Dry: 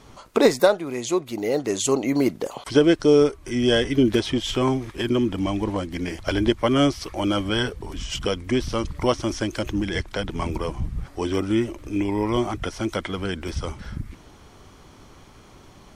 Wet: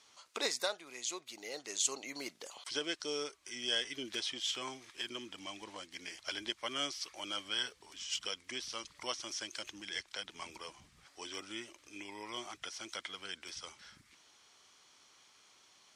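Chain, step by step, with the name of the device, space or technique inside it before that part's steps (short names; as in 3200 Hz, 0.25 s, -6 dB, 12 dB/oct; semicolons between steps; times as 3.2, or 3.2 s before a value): piezo pickup straight into a mixer (LPF 5800 Hz 12 dB/oct; differentiator)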